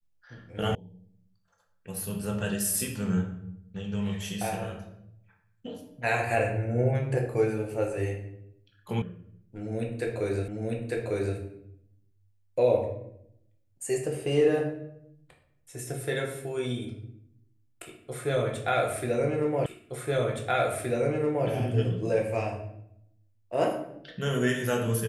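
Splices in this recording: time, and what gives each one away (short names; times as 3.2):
0.75 sound cut off
9.02 sound cut off
10.48 repeat of the last 0.9 s
19.66 repeat of the last 1.82 s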